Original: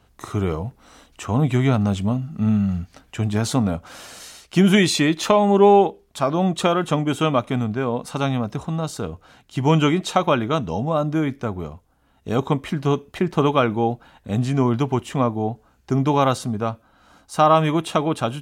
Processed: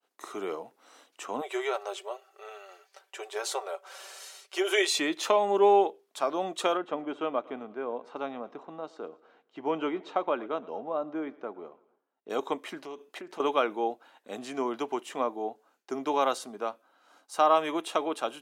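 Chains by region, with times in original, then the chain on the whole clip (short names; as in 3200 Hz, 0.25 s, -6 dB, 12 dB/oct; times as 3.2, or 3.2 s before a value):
1.41–4.98 brick-wall FIR high-pass 350 Hz + comb 5.2 ms, depth 56%
6.77–12.3 tape spacing loss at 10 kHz 34 dB + feedback echo 0.114 s, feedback 56%, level -22 dB
12.81–13.4 compressor 16:1, threshold -25 dBFS + Doppler distortion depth 0.13 ms
whole clip: expander -52 dBFS; HPF 330 Hz 24 dB/oct; gain -7 dB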